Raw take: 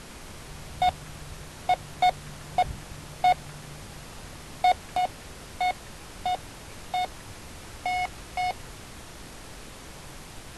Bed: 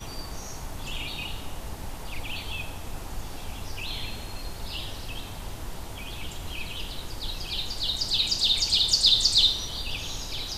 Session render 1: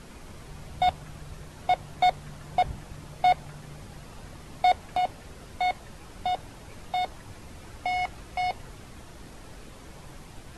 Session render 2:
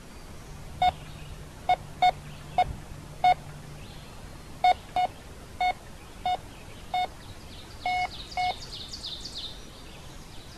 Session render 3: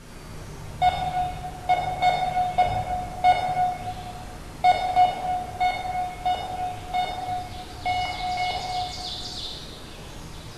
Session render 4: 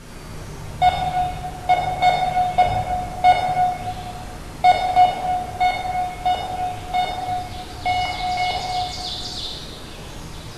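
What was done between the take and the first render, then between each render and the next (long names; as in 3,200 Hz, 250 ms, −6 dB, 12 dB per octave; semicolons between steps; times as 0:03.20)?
broadband denoise 7 dB, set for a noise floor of −44 dBFS
mix in bed −18 dB
dense smooth reverb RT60 2 s, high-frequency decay 0.6×, DRR −3.5 dB
level +4.5 dB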